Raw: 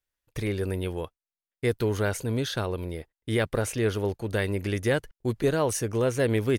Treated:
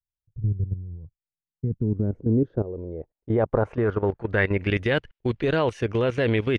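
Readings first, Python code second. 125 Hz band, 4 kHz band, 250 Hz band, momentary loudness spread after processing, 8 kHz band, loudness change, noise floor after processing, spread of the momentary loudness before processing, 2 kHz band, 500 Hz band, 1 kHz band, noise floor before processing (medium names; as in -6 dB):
+3.5 dB, -1.0 dB, +3.5 dB, 11 LU, under -20 dB, +2.5 dB, under -85 dBFS, 8 LU, +3.5 dB, +1.5 dB, +2.5 dB, under -85 dBFS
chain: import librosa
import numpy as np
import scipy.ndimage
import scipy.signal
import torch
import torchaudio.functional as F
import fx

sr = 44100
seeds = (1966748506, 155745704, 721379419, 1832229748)

y = fx.level_steps(x, sr, step_db=14)
y = fx.filter_sweep_lowpass(y, sr, from_hz=120.0, to_hz=2900.0, start_s=1.18, end_s=4.87, q=1.8)
y = y * librosa.db_to_amplitude(6.5)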